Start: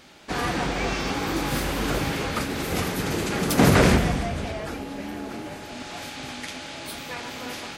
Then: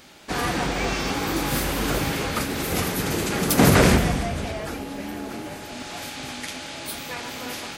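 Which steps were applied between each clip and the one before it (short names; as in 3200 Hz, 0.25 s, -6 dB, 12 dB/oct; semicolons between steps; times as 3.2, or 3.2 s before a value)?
high shelf 9100 Hz +8.5 dB; gain +1 dB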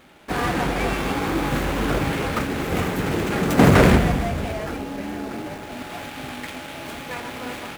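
median filter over 9 samples; in parallel at -9 dB: bit-crush 6-bit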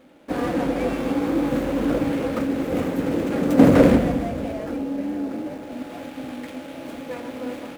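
small resonant body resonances 280/510 Hz, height 15 dB, ringing for 35 ms; gain -8.5 dB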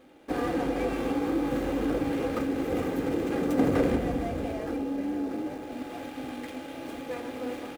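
comb 2.5 ms, depth 38%; compressor 2:1, threshold -23 dBFS, peak gain reduction 8.5 dB; gain -3 dB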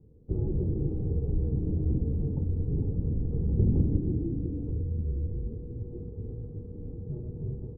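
elliptic low-pass 790 Hz, stop band 80 dB; frequency shift -360 Hz; gain +1 dB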